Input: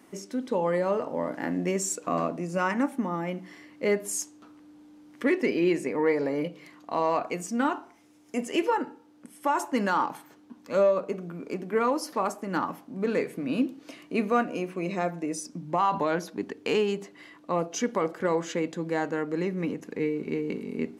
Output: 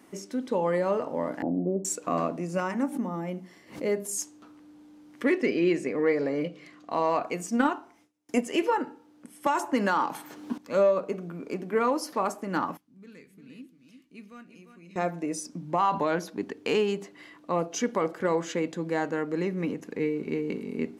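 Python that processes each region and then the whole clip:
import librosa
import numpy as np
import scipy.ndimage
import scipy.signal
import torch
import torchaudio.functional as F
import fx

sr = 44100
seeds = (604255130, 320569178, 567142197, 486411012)

y = fx.chain(x, sr, fx.cheby1_lowpass(hz=740.0, order=4),
    fx.band_squash(depth_pct=70), at=(1.42, 1.85))
y = fx.chain(y, sr, fx.peak_eq(hz=1900.0, db=-7.0, octaves=2.6),
    fx.hum_notches(base_hz=50, count=9),
    fx.pre_swell(db_per_s=150.0), at=(2.6, 4.18))
y = fx.chain(y, sr, fx.lowpass(hz=8400.0, slope=12),
    fx.notch(hz=910.0, q=5.4), at=(5.38, 6.91))
y = fx.chain(y, sr, fx.gate_hold(open_db=-50.0, close_db=-56.0, hold_ms=71.0, range_db=-21, attack_ms=1.4, release_ms=100.0),
    fx.transient(attack_db=6, sustain_db=-2), at=(7.49, 8.45))
y = fx.chain(y, sr, fx.highpass(hz=140.0, slope=12),
    fx.band_squash(depth_pct=100), at=(9.46, 10.58))
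y = fx.chain(y, sr, fx.tone_stack(knobs='6-0-2'),
    fx.echo_single(ms=349, db=-8.5), at=(12.77, 14.96))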